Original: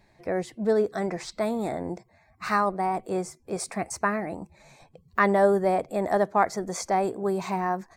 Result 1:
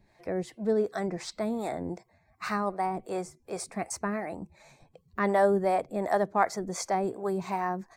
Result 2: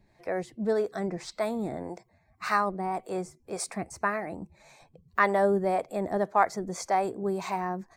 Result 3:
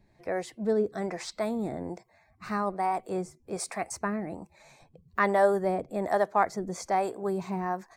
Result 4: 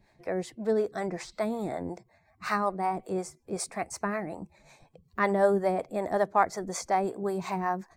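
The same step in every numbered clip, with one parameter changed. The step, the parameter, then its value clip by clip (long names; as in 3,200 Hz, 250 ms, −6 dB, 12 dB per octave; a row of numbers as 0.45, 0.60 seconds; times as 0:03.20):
two-band tremolo in antiphase, speed: 2.7, 1.8, 1.2, 5.4 Hertz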